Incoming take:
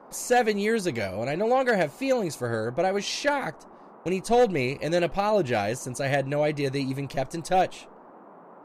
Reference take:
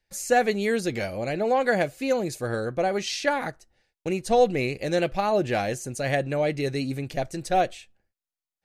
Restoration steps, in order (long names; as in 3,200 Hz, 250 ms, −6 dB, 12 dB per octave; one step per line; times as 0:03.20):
clipped peaks rebuilt −14 dBFS
noise reduction from a noise print 24 dB